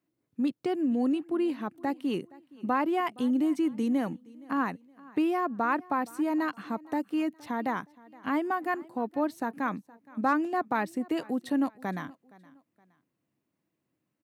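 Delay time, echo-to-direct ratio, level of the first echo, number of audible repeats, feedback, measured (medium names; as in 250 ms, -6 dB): 468 ms, -22.0 dB, -22.5 dB, 2, 35%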